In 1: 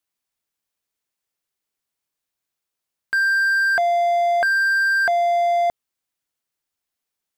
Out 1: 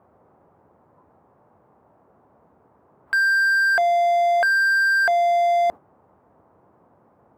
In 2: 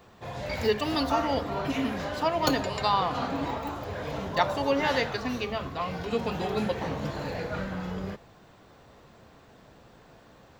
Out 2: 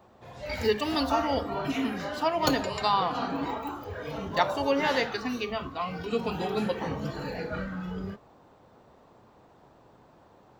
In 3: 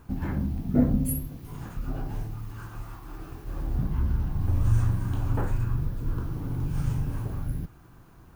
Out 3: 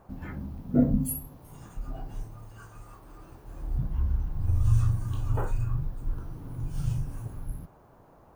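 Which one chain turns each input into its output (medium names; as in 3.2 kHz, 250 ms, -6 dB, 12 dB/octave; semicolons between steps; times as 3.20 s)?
band noise 72–1000 Hz -49 dBFS; spectral noise reduction 9 dB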